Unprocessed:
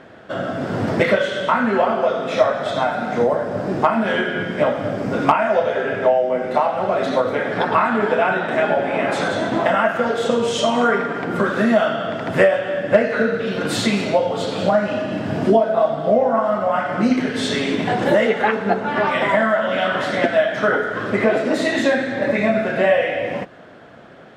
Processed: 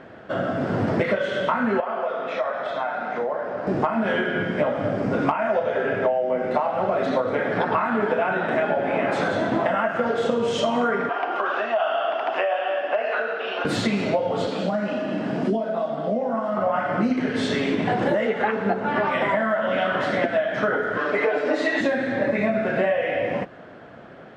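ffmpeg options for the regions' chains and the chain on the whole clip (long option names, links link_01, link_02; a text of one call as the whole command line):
ffmpeg -i in.wav -filter_complex "[0:a]asettb=1/sr,asplit=3[link_01][link_02][link_03];[link_01]atrim=end=1.804[link_04];[link_02]atrim=start=1.8:end=3.67,asetpts=PTS-STARTPTS,afade=type=in:duration=0.004:curve=qsin,afade=type=out:start_time=1.866:duration=0.004:curve=qsin,bandpass=frequency=1400:width_type=q:width=0.54,acompressor=threshold=-24dB:ratio=2:attack=3.2:release=140:knee=1:detection=peak[link_05];[link_03]atrim=start=3.666[link_06];[link_04][link_05]acrossfade=duration=0.004:curve1=hsin:curve2=qsin[link_07];[link_07][link_06]acrossfade=duration=0.004:curve1=qsin:curve2=hsin,asettb=1/sr,asplit=3[link_08][link_09][link_10];[link_08]atrim=end=11.094[link_11];[link_09]atrim=start=11.09:end=13.65,asetpts=PTS-STARTPTS,afade=type=in:duration=0.004:curve=qsin,afade=type=out:start_time=2.556:duration=0.004:curve=qsin,acompressor=threshold=-17dB:ratio=2.5:attack=3.2:release=140:knee=1:detection=peak,highpass=frequency=420:width=0.5412,highpass=frequency=420:width=1.3066,equalizer=frequency=490:width_type=q:width=4:gain=-9,equalizer=frequency=750:width_type=q:width=4:gain=9,equalizer=frequency=1100:width_type=q:width=4:gain=4,equalizer=frequency=2000:width_type=q:width=4:gain=-5,equalizer=frequency=2800:width_type=q:width=4:gain=9,equalizer=frequency=4200:width_type=q:width=4:gain=-5,lowpass=frequency=5500:width=0.5412,lowpass=frequency=5500:width=1.3066[link_12];[link_10]atrim=start=13.646[link_13];[link_11][link_12]acrossfade=duration=0.004:curve1=hsin:curve2=qsin[link_14];[link_14][link_13]acrossfade=duration=0.004:curve1=qsin:curve2=hsin,asettb=1/sr,asplit=3[link_15][link_16][link_17];[link_15]atrim=end=14.474[link_18];[link_16]atrim=start=14.47:end=16.57,asetpts=PTS-STARTPTS,afade=type=in:duration=0.004:curve=qsin,afade=type=out:start_time=2.096:duration=0.004:curve=qsin,acrossover=split=260|3000[link_19][link_20][link_21];[link_20]acompressor=threshold=-26dB:ratio=2.5:attack=3.2:release=140:knee=2.83:detection=peak[link_22];[link_19][link_22][link_21]amix=inputs=3:normalize=0,highpass=frequency=170:width=0.5412,highpass=frequency=170:width=1.3066[link_23];[link_17]atrim=start=16.566[link_24];[link_18][link_23]acrossfade=duration=0.004:curve1=hsin:curve2=qsin[link_25];[link_25][link_24]acrossfade=duration=0.004:curve1=qsin:curve2=hsin,asettb=1/sr,asplit=3[link_26][link_27][link_28];[link_26]atrim=end=20.984[link_29];[link_27]atrim=start=20.98:end=21.81,asetpts=PTS-STARTPTS,afade=type=in:duration=0.004:curve=qsin,afade=type=out:start_time=0.826:duration=0.004:curve=qsin,highpass=370,lowpass=7100,aecho=1:1:6.8:0.99,atrim=end_sample=36603[link_30];[link_28]atrim=start=21.806[link_31];[link_29][link_30]acrossfade=duration=0.004:curve1=hsin:curve2=qsin[link_32];[link_32][link_31]acrossfade=duration=0.004:curve1=qsin:curve2=hsin,equalizer=frequency=3600:width_type=o:width=0.2:gain=-2.5,acompressor=threshold=-18dB:ratio=6,aemphasis=mode=reproduction:type=50kf" out.wav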